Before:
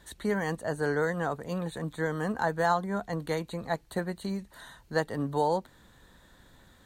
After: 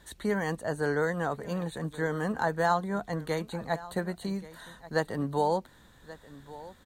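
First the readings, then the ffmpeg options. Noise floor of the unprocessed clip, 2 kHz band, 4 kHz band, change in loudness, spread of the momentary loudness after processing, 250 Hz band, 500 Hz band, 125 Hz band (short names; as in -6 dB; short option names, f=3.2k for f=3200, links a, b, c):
-59 dBFS, 0.0 dB, 0.0 dB, 0.0 dB, 19 LU, 0.0 dB, 0.0 dB, 0.0 dB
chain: -af "aecho=1:1:1131:0.126"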